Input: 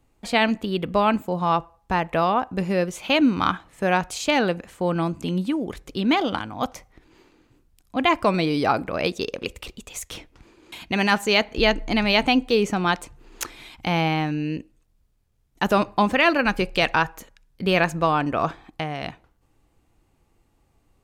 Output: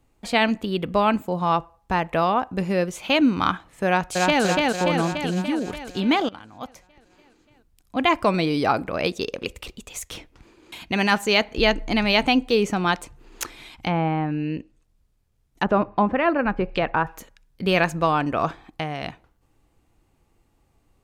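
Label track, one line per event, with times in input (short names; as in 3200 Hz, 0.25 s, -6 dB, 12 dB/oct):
3.860000	4.430000	echo throw 0.29 s, feedback 65%, level -1.5 dB
6.290000	7.970000	fade in, from -16 dB
13.560000	17.070000	treble ducked by the level closes to 1400 Hz, closed at -18.5 dBFS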